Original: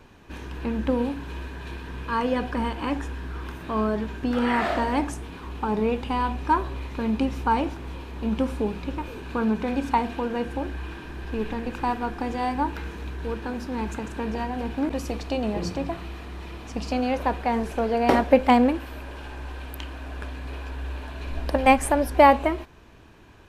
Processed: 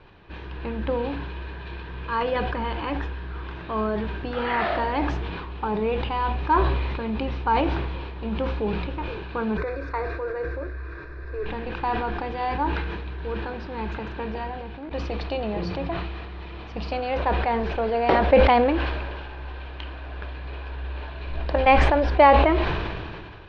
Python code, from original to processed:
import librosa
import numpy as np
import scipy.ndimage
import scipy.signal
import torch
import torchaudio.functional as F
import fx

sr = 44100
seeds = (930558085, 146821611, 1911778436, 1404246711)

y = fx.fixed_phaser(x, sr, hz=830.0, stages=6, at=(9.57, 11.46))
y = fx.edit(y, sr, fx.fade_out_to(start_s=14.26, length_s=0.65, floor_db=-12.0), tone=tone)
y = scipy.signal.sosfilt(scipy.signal.butter(6, 4400.0, 'lowpass', fs=sr, output='sos'), y)
y = fx.peak_eq(y, sr, hz=250.0, db=-14.0, octaves=0.22)
y = fx.sustainer(y, sr, db_per_s=28.0)